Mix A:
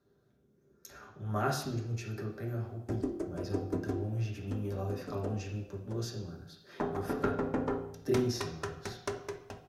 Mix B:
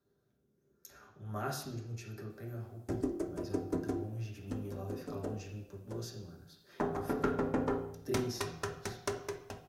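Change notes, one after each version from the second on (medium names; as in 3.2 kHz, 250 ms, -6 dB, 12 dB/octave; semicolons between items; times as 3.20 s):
speech -6.5 dB; master: add treble shelf 8 kHz +8.5 dB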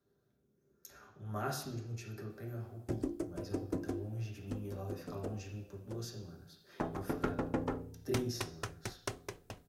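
background: send off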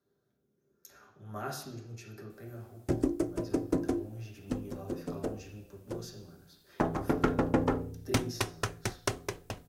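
speech: add bass shelf 86 Hz -9 dB; background +8.0 dB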